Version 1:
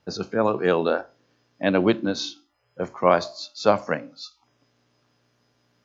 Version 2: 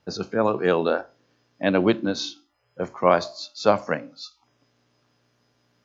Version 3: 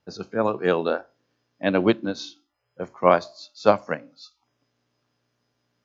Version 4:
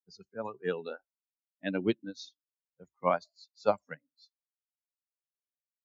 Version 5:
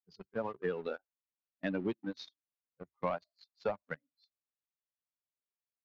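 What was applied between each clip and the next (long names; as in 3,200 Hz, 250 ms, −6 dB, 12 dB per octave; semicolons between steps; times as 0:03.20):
no processing that can be heard
expander for the loud parts 1.5 to 1, over −31 dBFS; level +2 dB
spectral dynamics exaggerated over time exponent 2; level −7.5 dB
leveller curve on the samples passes 2; downward compressor 5 to 1, threshold −33 dBFS, peak gain reduction 14.5 dB; high-frequency loss of the air 240 metres; level +1 dB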